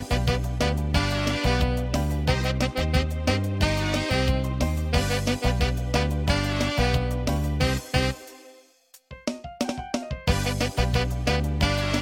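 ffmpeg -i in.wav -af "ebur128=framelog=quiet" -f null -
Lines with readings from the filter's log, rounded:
Integrated loudness:
  I:         -25.1 LUFS
  Threshold: -35.4 LUFS
Loudness range:
  LRA:         4.1 LU
  Threshold: -45.6 LUFS
  LRA low:   -28.6 LUFS
  LRA high:  -24.5 LUFS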